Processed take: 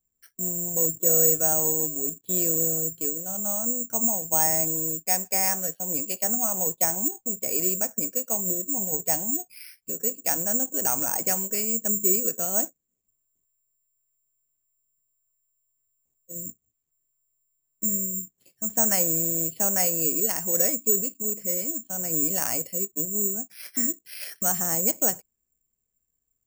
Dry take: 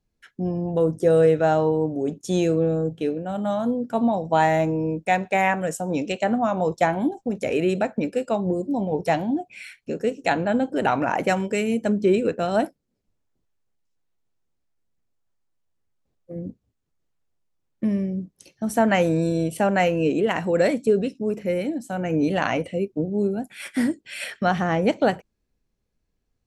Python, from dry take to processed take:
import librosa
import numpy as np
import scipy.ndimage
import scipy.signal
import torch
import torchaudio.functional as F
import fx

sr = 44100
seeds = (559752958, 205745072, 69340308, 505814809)

y = (np.kron(scipy.signal.resample_poly(x, 1, 6), np.eye(6)[0]) * 6)[:len(x)]
y = y * 10.0 ** (-11.0 / 20.0)